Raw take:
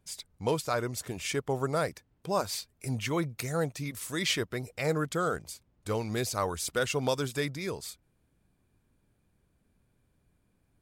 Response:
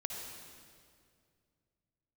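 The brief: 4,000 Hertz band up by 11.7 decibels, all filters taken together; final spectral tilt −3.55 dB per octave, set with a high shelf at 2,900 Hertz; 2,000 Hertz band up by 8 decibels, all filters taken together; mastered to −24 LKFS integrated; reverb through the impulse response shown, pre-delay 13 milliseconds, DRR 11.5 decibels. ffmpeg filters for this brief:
-filter_complex "[0:a]equalizer=frequency=2000:width_type=o:gain=5.5,highshelf=frequency=2900:gain=6,equalizer=frequency=4000:width_type=o:gain=8.5,asplit=2[link_01][link_02];[1:a]atrim=start_sample=2205,adelay=13[link_03];[link_02][link_03]afir=irnorm=-1:irlink=0,volume=-12dB[link_04];[link_01][link_04]amix=inputs=2:normalize=0,volume=2.5dB"

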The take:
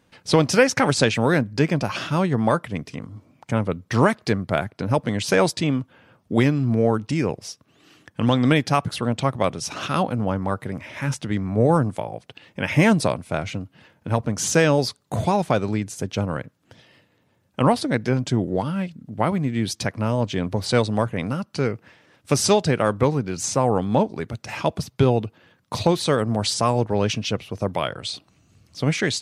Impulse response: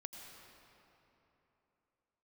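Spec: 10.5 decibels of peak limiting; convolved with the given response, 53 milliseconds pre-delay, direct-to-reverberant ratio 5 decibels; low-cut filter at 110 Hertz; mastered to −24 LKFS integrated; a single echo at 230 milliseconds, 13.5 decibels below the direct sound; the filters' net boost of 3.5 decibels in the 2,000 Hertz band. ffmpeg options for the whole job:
-filter_complex "[0:a]highpass=110,equalizer=frequency=2000:width_type=o:gain=4.5,alimiter=limit=-11dB:level=0:latency=1,aecho=1:1:230:0.211,asplit=2[link_01][link_02];[1:a]atrim=start_sample=2205,adelay=53[link_03];[link_02][link_03]afir=irnorm=-1:irlink=0,volume=-1.5dB[link_04];[link_01][link_04]amix=inputs=2:normalize=0,volume=-0.5dB"

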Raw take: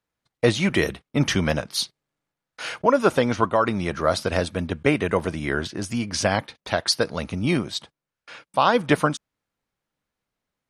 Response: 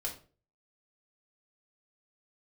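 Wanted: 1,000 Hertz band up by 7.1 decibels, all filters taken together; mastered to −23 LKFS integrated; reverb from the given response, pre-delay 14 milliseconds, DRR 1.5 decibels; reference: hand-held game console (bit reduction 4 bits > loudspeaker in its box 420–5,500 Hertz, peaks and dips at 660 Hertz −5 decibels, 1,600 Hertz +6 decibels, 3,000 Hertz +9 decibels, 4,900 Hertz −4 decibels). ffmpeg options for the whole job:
-filter_complex "[0:a]equalizer=frequency=1000:width_type=o:gain=8.5,asplit=2[link_01][link_02];[1:a]atrim=start_sample=2205,adelay=14[link_03];[link_02][link_03]afir=irnorm=-1:irlink=0,volume=-2.5dB[link_04];[link_01][link_04]amix=inputs=2:normalize=0,acrusher=bits=3:mix=0:aa=0.000001,highpass=420,equalizer=frequency=660:width_type=q:width=4:gain=-5,equalizer=frequency=1600:width_type=q:width=4:gain=6,equalizer=frequency=3000:width_type=q:width=4:gain=9,equalizer=frequency=4900:width_type=q:width=4:gain=-4,lowpass=frequency=5500:width=0.5412,lowpass=frequency=5500:width=1.3066,volume=-5dB"

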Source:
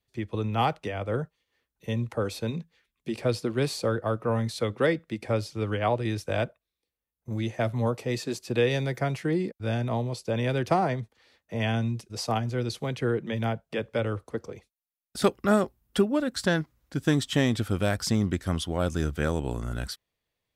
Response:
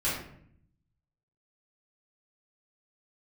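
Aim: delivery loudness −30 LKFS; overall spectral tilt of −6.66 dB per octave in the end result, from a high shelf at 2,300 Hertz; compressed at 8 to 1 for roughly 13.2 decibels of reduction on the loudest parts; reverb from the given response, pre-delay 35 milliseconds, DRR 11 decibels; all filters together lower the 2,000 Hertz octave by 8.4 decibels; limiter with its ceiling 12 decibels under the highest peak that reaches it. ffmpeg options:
-filter_complex "[0:a]equalizer=frequency=2000:width_type=o:gain=-8,highshelf=frequency=2300:gain=-7,acompressor=threshold=-32dB:ratio=8,alimiter=level_in=8dB:limit=-24dB:level=0:latency=1,volume=-8dB,asplit=2[link_01][link_02];[1:a]atrim=start_sample=2205,adelay=35[link_03];[link_02][link_03]afir=irnorm=-1:irlink=0,volume=-20dB[link_04];[link_01][link_04]amix=inputs=2:normalize=0,volume=12dB"

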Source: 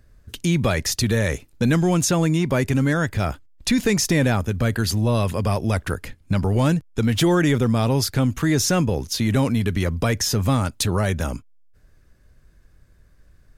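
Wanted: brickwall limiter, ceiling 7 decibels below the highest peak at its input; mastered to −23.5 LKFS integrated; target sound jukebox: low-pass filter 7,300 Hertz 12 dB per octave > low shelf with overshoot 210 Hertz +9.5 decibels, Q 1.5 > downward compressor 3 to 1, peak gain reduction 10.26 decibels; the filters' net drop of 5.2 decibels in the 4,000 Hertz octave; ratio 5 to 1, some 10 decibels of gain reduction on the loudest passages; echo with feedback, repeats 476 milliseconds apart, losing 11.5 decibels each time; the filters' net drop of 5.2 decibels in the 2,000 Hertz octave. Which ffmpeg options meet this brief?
ffmpeg -i in.wav -af "equalizer=frequency=2000:width_type=o:gain=-5.5,equalizer=frequency=4000:width_type=o:gain=-5,acompressor=threshold=-27dB:ratio=5,alimiter=limit=-22dB:level=0:latency=1,lowpass=7300,lowshelf=frequency=210:width_type=q:width=1.5:gain=9.5,aecho=1:1:476|952|1428:0.266|0.0718|0.0194,acompressor=threshold=-29dB:ratio=3,volume=7.5dB" out.wav

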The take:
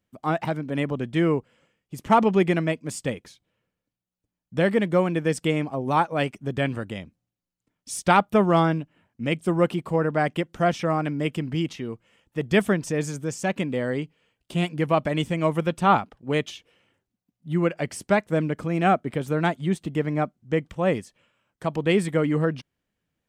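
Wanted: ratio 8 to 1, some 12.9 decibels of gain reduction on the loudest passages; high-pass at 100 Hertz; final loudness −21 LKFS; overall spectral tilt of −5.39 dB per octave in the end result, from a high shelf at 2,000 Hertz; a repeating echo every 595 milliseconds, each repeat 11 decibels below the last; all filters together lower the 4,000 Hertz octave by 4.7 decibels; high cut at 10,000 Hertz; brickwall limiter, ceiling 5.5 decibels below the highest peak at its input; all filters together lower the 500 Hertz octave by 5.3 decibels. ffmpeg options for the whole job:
ffmpeg -i in.wav -af "highpass=100,lowpass=10000,equalizer=frequency=500:width_type=o:gain=-6.5,highshelf=frequency=2000:gain=-3,equalizer=frequency=4000:width_type=o:gain=-3.5,acompressor=threshold=-29dB:ratio=8,alimiter=level_in=0.5dB:limit=-24dB:level=0:latency=1,volume=-0.5dB,aecho=1:1:595|1190|1785:0.282|0.0789|0.0221,volume=15dB" out.wav

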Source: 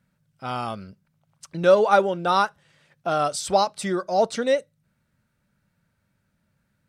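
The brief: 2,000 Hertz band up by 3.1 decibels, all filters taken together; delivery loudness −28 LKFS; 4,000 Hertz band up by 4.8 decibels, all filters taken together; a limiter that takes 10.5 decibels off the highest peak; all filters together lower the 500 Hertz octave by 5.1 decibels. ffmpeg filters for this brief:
ffmpeg -i in.wav -af "equalizer=frequency=500:width_type=o:gain=-6.5,equalizer=frequency=2000:width_type=o:gain=4.5,equalizer=frequency=4000:width_type=o:gain=4.5,volume=-1dB,alimiter=limit=-16.5dB:level=0:latency=1" out.wav

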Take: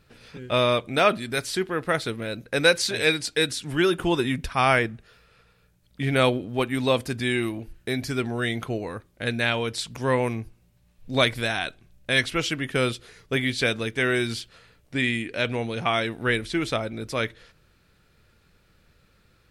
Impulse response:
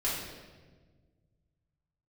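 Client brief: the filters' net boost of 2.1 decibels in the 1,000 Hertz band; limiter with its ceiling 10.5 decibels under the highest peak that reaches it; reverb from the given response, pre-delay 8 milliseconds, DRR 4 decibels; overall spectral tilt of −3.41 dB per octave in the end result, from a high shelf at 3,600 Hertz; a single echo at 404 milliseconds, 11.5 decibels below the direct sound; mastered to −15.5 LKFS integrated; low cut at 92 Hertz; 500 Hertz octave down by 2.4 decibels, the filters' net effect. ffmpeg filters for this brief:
-filter_complex "[0:a]highpass=92,equalizer=frequency=500:width_type=o:gain=-4,equalizer=frequency=1000:width_type=o:gain=3,highshelf=frequency=3600:gain=8,alimiter=limit=-13dB:level=0:latency=1,aecho=1:1:404:0.266,asplit=2[link_01][link_02];[1:a]atrim=start_sample=2205,adelay=8[link_03];[link_02][link_03]afir=irnorm=-1:irlink=0,volume=-11.5dB[link_04];[link_01][link_04]amix=inputs=2:normalize=0,volume=9dB"

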